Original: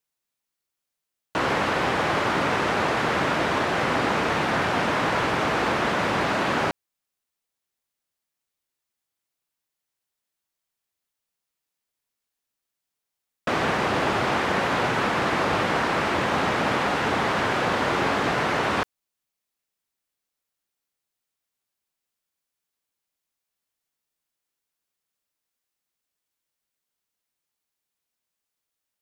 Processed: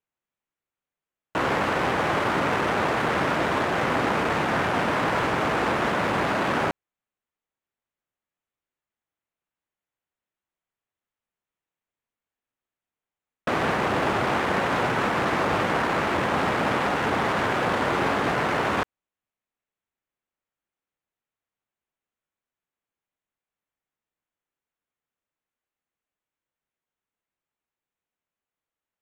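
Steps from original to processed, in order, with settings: local Wiener filter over 9 samples

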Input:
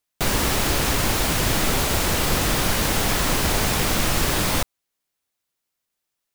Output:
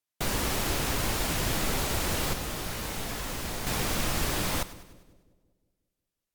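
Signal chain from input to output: 2.33–3.67 s: feedback comb 57 Hz, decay 0.4 s, harmonics all, mix 70%; two-band feedback delay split 560 Hz, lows 180 ms, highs 100 ms, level -16 dB; trim -7.5 dB; Vorbis 96 kbps 48 kHz

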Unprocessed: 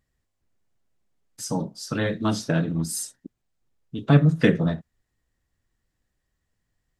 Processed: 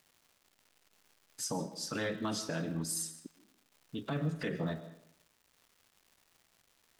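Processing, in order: bass shelf 190 Hz -12 dB; in parallel at -0.5 dB: compression, threshold -28 dBFS, peak gain reduction 12 dB; on the sum: peak limiter -17 dBFS, peak gain reduction 11.5 dB; crackle 400 per s -44 dBFS; reverberation RT60 0.70 s, pre-delay 80 ms, DRR 13 dB; trim -9 dB

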